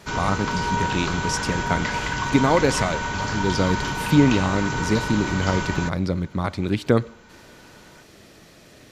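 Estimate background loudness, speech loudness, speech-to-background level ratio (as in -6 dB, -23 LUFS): -26.0 LUFS, -23.5 LUFS, 2.5 dB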